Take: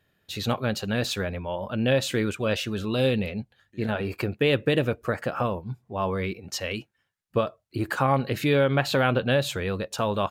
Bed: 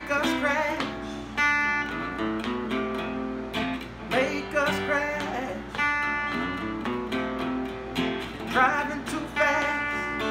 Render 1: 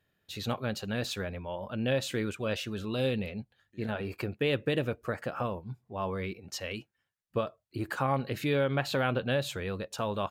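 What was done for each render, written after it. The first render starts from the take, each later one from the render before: gain -6.5 dB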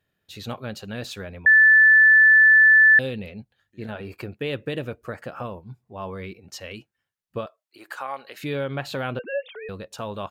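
1.46–2.99 bleep 1750 Hz -10 dBFS; 7.46–8.43 HPF 680 Hz; 9.19–9.69 sine-wave speech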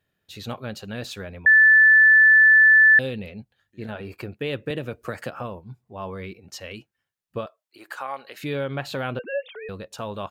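4.7–5.3 three-band squash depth 100%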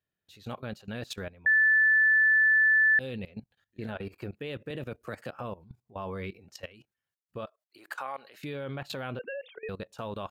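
level quantiser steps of 18 dB; limiter -18.5 dBFS, peak gain reduction 6 dB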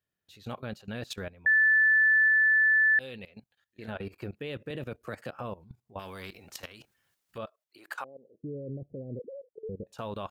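2.28–3.88 low shelf 420 Hz -10.5 dB; 5.99–7.38 spectral compressor 2:1; 8.04–9.87 steep low-pass 530 Hz 48 dB/oct

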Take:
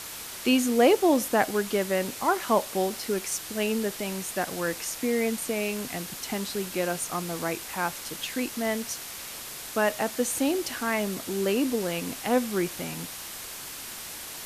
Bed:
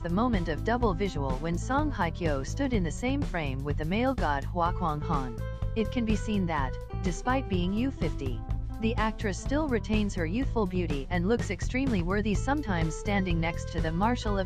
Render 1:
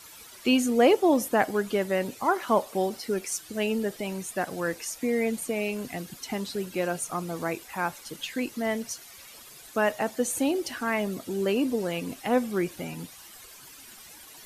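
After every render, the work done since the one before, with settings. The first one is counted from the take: denoiser 13 dB, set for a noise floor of -39 dBFS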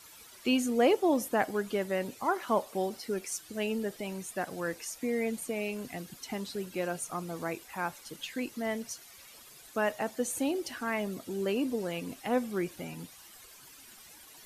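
gain -5 dB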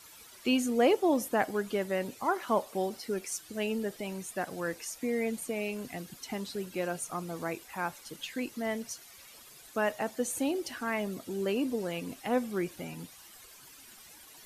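nothing audible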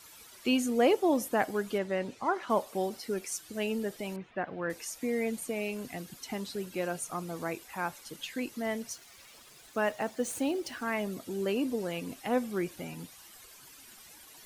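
1.78–2.5 air absorption 71 m; 4.16–4.7 LPF 2800 Hz 24 dB/oct; 8.93–10.82 median filter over 3 samples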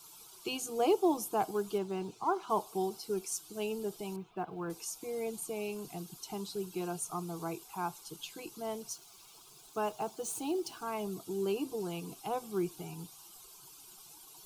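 fixed phaser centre 370 Hz, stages 8; companded quantiser 8-bit

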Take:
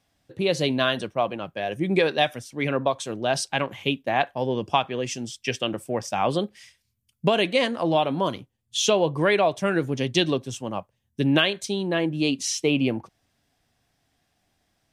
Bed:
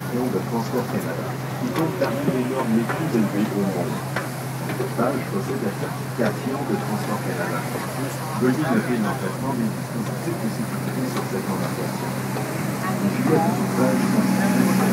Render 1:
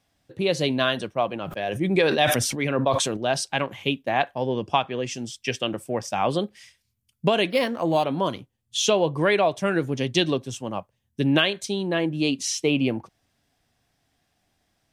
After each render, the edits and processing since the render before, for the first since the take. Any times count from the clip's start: 1.27–3.17 sustainer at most 36 dB/s; 4.38–5.14 high shelf 9700 Hz -9 dB; 7.5–8.04 decimation joined by straight lines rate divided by 6×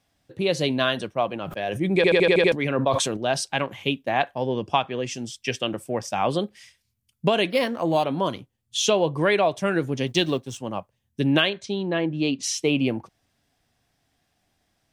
1.96 stutter in place 0.08 s, 7 plays; 10.07–10.58 G.711 law mismatch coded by A; 11.49–12.43 air absorption 120 m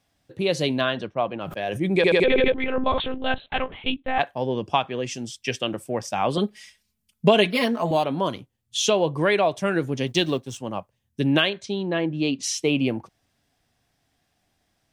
0.81–1.41 air absorption 150 m; 2.24–4.19 monotone LPC vocoder at 8 kHz 260 Hz; 6.37–7.91 comb 4.7 ms, depth 93%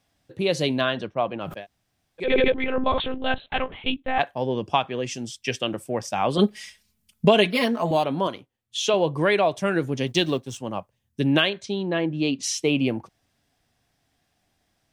1.59–2.26 room tone, crossfade 0.16 s; 6.39–7.25 gain +5.5 dB; 8.27–8.94 tone controls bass -10 dB, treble -6 dB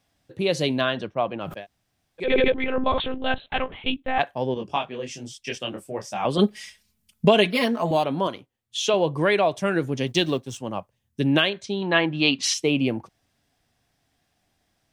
4.54–6.25 detuned doubles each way 38 cents; 11.82–12.54 band shelf 1900 Hz +10 dB 2.9 oct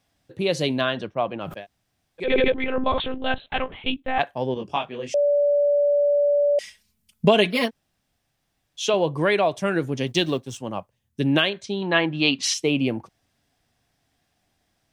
5.14–6.59 bleep 578 Hz -16 dBFS; 7.68–8.8 room tone, crossfade 0.06 s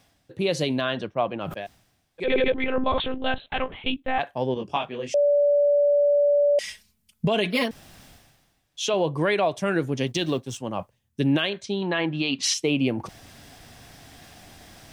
reverse; upward compressor, threshold -28 dBFS; reverse; limiter -12.5 dBFS, peak gain reduction 10 dB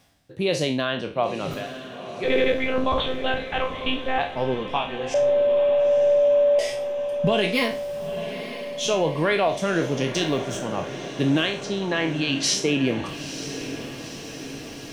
spectral trails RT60 0.37 s; diffused feedback echo 0.931 s, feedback 63%, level -11 dB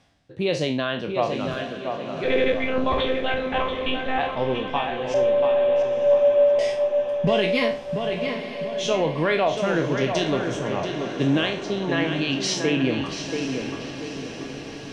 air absorption 76 m; tape echo 0.685 s, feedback 44%, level -5 dB, low-pass 3400 Hz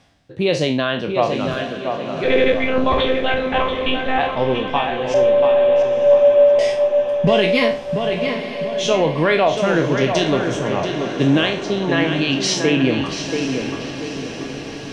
gain +5.5 dB

